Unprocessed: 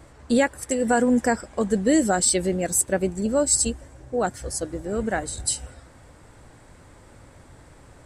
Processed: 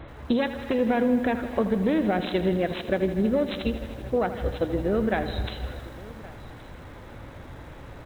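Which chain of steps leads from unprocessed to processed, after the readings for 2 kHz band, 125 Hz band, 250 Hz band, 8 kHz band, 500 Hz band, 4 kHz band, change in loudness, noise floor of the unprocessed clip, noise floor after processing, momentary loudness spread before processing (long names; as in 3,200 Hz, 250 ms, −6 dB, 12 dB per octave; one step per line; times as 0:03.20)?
−3.0 dB, +2.0 dB, −1.0 dB, below −30 dB, −1.0 dB, −4.0 dB, −3.0 dB, −50 dBFS, −44 dBFS, 10 LU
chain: phase distortion by the signal itself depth 0.15 ms
brickwall limiter −14 dBFS, peak gain reduction 6 dB
downward compressor 4 to 1, threshold −28 dBFS, peak gain reduction 9 dB
linear-phase brick-wall low-pass 4,100 Hz
on a send: single-tap delay 1,121 ms −21 dB
on the sum: feedback echo at a low word length 80 ms, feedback 80%, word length 9 bits, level −12.5 dB
level +6.5 dB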